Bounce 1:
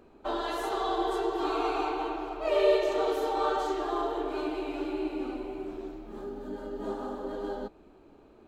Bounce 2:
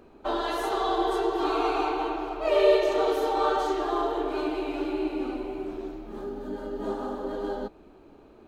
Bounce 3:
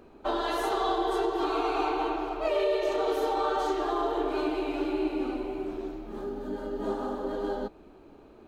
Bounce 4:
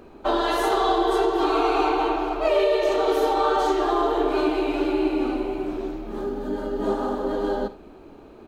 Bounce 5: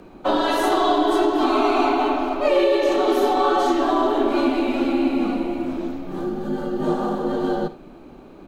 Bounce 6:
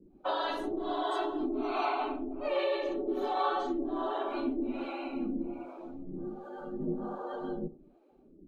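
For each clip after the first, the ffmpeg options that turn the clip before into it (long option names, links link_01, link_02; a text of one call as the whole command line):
ffmpeg -i in.wav -af "bandreject=frequency=7500:width=15,volume=3.5dB" out.wav
ffmpeg -i in.wav -af "alimiter=limit=-18dB:level=0:latency=1:release=269" out.wav
ffmpeg -i in.wav -af "aecho=1:1:53|79:0.188|0.133,volume=6.5dB" out.wav
ffmpeg -i in.wav -af "afreqshift=-42,volume=2.5dB" out.wav
ffmpeg -i in.wav -filter_complex "[0:a]afftdn=noise_reduction=16:noise_floor=-39,acrossover=split=440[link_01][link_02];[link_01]aeval=exprs='val(0)*(1-1/2+1/2*cos(2*PI*1.3*n/s))':channel_layout=same[link_03];[link_02]aeval=exprs='val(0)*(1-1/2-1/2*cos(2*PI*1.3*n/s))':channel_layout=same[link_04];[link_03][link_04]amix=inputs=2:normalize=0,volume=-8.5dB" out.wav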